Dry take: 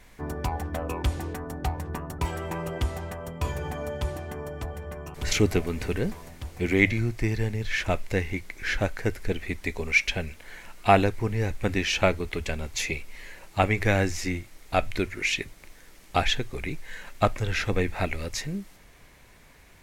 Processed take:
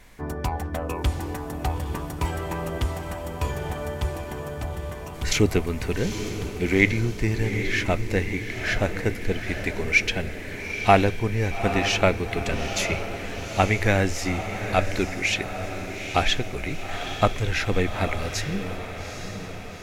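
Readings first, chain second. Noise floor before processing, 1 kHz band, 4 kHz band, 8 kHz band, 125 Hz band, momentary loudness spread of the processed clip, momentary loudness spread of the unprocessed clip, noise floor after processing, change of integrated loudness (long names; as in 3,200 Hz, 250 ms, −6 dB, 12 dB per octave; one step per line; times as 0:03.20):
−52 dBFS, +3.0 dB, +3.0 dB, +3.0 dB, +2.5 dB, 12 LU, 13 LU, −35 dBFS, +2.5 dB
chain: feedback delay with all-pass diffusion 851 ms, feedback 57%, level −8.5 dB
level +2 dB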